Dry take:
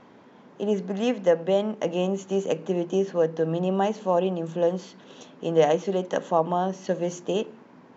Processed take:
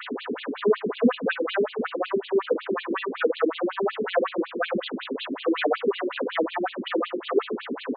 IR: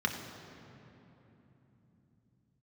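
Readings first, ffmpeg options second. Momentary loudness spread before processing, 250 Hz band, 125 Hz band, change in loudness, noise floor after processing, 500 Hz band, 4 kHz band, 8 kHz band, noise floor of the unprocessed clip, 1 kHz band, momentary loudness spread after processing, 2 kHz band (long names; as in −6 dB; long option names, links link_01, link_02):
6 LU, 0.0 dB, below −10 dB, −1.0 dB, −41 dBFS, −1.0 dB, +4.5 dB, can't be measured, −52 dBFS, −1.5 dB, 7 LU, +9.5 dB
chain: -filter_complex "[0:a]aeval=exprs='val(0)+0.5*0.0251*sgn(val(0))':channel_layout=same,equalizer=frequency=350:width=1.4:gain=10,aresample=16000,asoftclip=type=tanh:threshold=-19.5dB,aresample=44100[link_01];[1:a]atrim=start_sample=2205,atrim=end_sample=3528[link_02];[link_01][link_02]afir=irnorm=-1:irlink=0,asplit=2[link_03][link_04];[link_04]acrusher=bits=4:mix=0:aa=0.000001,volume=-10dB[link_05];[link_03][link_05]amix=inputs=2:normalize=0,afftfilt=real='re*between(b*sr/1024,300*pow(3400/300,0.5+0.5*sin(2*PI*5.4*pts/sr))/1.41,300*pow(3400/300,0.5+0.5*sin(2*PI*5.4*pts/sr))*1.41)':imag='im*between(b*sr/1024,300*pow(3400/300,0.5+0.5*sin(2*PI*5.4*pts/sr))/1.41,300*pow(3400/300,0.5+0.5*sin(2*PI*5.4*pts/sr))*1.41)':win_size=1024:overlap=0.75"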